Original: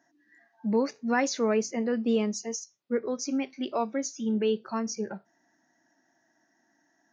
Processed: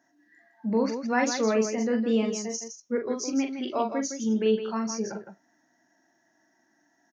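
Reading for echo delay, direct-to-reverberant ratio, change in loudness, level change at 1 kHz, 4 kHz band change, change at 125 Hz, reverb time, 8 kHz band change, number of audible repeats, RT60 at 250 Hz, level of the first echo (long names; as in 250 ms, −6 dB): 41 ms, no reverb audible, +2.0 dB, +2.0 dB, +1.5 dB, can't be measured, no reverb audible, can't be measured, 2, no reverb audible, −5.0 dB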